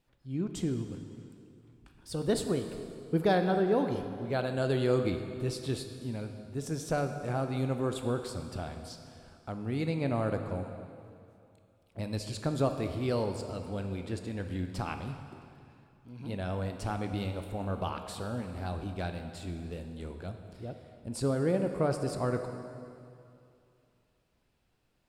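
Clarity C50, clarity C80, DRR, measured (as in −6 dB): 7.0 dB, 8.0 dB, 6.0 dB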